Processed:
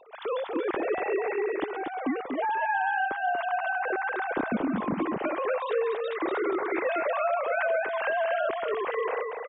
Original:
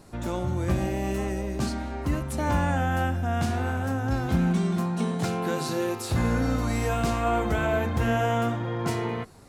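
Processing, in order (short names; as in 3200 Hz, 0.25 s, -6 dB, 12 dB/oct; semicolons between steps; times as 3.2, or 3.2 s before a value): sine-wave speech; compressor, threshold -25 dBFS, peak gain reduction 10 dB; echo 0.238 s -5 dB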